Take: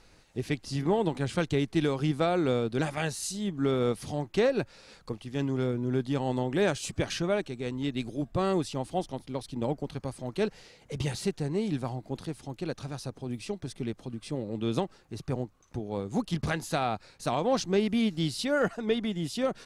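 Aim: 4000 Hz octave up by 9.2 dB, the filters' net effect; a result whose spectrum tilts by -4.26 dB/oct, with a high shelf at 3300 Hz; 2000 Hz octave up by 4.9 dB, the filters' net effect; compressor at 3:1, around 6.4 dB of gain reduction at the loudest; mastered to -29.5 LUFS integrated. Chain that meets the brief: bell 2000 Hz +3 dB; high shelf 3300 Hz +5 dB; bell 4000 Hz +7 dB; compressor 3:1, threshold -29 dBFS; gain +4 dB

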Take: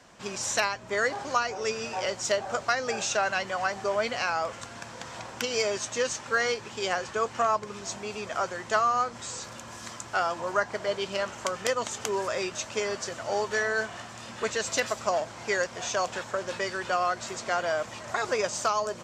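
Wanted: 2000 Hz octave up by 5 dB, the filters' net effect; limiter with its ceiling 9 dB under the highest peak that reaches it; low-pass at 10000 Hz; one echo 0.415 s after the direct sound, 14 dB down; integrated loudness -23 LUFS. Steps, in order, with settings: LPF 10000 Hz; bell 2000 Hz +6.5 dB; limiter -17 dBFS; echo 0.415 s -14 dB; gain +6 dB

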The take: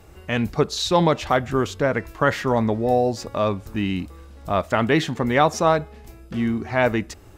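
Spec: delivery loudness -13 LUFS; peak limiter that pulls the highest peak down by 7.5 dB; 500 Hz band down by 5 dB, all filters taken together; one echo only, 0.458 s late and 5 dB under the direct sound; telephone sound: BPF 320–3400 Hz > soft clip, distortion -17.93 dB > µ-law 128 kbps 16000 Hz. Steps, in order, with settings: bell 500 Hz -5.5 dB; limiter -14.5 dBFS; BPF 320–3400 Hz; echo 0.458 s -5 dB; soft clip -16 dBFS; gain +16 dB; µ-law 128 kbps 16000 Hz

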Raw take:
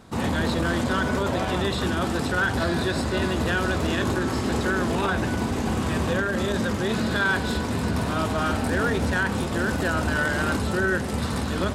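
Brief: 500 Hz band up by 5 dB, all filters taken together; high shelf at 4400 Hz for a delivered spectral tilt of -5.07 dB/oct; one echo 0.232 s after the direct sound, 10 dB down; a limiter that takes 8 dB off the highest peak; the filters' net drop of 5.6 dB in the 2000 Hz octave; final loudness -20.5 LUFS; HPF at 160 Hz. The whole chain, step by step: HPF 160 Hz; bell 500 Hz +7 dB; bell 2000 Hz -8 dB; high shelf 4400 Hz -7 dB; limiter -18.5 dBFS; echo 0.232 s -10 dB; gain +6.5 dB

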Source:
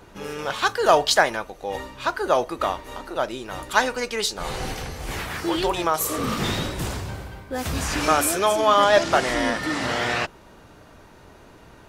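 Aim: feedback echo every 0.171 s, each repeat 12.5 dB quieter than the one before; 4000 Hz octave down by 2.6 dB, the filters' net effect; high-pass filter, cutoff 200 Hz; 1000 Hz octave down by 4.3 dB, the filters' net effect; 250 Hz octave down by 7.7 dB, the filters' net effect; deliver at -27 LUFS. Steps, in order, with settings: HPF 200 Hz; bell 250 Hz -9 dB; bell 1000 Hz -5 dB; bell 4000 Hz -3 dB; feedback echo 0.171 s, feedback 24%, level -12.5 dB; gain -1 dB

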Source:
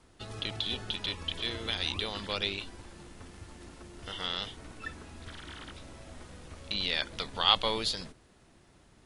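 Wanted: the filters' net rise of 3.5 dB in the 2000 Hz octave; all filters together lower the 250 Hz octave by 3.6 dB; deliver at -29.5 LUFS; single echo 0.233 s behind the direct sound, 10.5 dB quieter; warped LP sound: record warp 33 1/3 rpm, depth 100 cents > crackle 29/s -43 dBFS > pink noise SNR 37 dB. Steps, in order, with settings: bell 250 Hz -5 dB; bell 2000 Hz +4.5 dB; echo 0.233 s -10.5 dB; record warp 33 1/3 rpm, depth 100 cents; crackle 29/s -43 dBFS; pink noise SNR 37 dB; gain +1 dB

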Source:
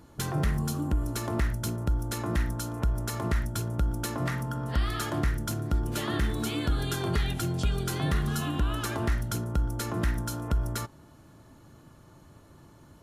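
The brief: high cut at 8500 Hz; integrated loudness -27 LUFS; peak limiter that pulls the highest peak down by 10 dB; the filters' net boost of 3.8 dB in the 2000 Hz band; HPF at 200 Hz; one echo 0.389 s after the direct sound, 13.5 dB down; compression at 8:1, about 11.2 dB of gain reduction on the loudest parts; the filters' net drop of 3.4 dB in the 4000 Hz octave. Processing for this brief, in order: HPF 200 Hz; LPF 8500 Hz; bell 2000 Hz +6 dB; bell 4000 Hz -6.5 dB; compressor 8:1, threshold -39 dBFS; limiter -34.5 dBFS; echo 0.389 s -13.5 dB; gain +17 dB

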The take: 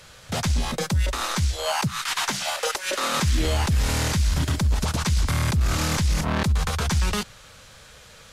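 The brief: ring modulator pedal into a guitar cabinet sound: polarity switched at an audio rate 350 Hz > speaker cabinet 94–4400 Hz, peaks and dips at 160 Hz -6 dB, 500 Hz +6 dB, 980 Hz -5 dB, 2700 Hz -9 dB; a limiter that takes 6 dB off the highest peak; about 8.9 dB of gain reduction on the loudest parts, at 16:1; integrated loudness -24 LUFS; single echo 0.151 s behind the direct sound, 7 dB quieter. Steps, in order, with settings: compressor 16:1, threshold -26 dBFS; limiter -23.5 dBFS; echo 0.151 s -7 dB; polarity switched at an audio rate 350 Hz; speaker cabinet 94–4400 Hz, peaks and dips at 160 Hz -6 dB, 500 Hz +6 dB, 980 Hz -5 dB, 2700 Hz -9 dB; gain +7 dB

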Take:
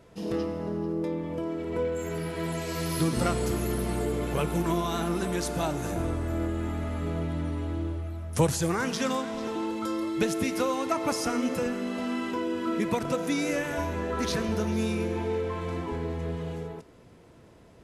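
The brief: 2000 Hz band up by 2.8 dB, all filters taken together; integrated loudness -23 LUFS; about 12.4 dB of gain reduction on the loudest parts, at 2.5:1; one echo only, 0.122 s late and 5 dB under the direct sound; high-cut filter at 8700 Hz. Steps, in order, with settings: LPF 8700 Hz; bell 2000 Hz +3.5 dB; compressor 2.5:1, threshold -36 dBFS; echo 0.122 s -5 dB; gain +12 dB

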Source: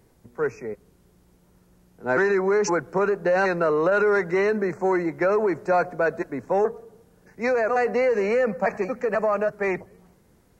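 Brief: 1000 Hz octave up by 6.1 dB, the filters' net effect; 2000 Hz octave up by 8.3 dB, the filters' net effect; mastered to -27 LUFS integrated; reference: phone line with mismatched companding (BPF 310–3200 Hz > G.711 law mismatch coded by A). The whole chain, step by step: BPF 310–3200 Hz; bell 1000 Hz +6 dB; bell 2000 Hz +9 dB; G.711 law mismatch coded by A; gain -6.5 dB

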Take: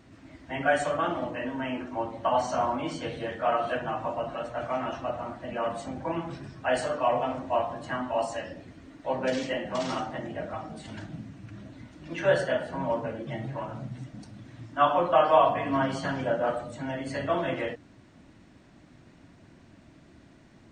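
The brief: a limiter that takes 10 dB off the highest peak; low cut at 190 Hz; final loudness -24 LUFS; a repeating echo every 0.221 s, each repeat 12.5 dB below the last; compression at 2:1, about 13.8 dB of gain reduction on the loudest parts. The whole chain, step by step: HPF 190 Hz; compressor 2:1, threshold -42 dBFS; limiter -31.5 dBFS; feedback echo 0.221 s, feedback 24%, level -12.5 dB; gain +17.5 dB

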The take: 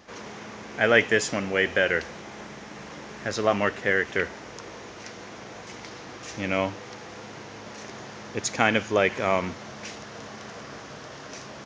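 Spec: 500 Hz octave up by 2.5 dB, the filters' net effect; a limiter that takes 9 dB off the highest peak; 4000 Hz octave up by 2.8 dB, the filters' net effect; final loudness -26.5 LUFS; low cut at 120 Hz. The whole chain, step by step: HPF 120 Hz; bell 500 Hz +3 dB; bell 4000 Hz +4 dB; gain +2.5 dB; limiter -10 dBFS

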